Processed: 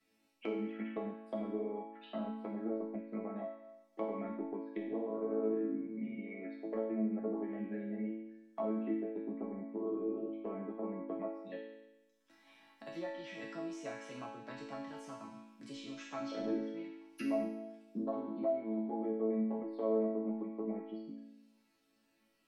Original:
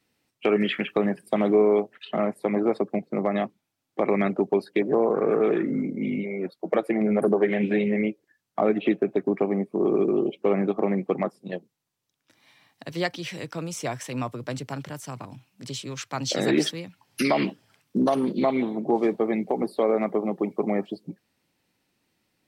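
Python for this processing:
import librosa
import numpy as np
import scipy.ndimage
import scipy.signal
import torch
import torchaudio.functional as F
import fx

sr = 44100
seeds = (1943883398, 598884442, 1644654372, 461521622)

y = fx.env_lowpass_down(x, sr, base_hz=940.0, full_db=-21.0)
y = fx.resonator_bank(y, sr, root=57, chord='major', decay_s=0.85)
y = fx.band_squash(y, sr, depth_pct=40)
y = y * librosa.db_to_amplitude(9.5)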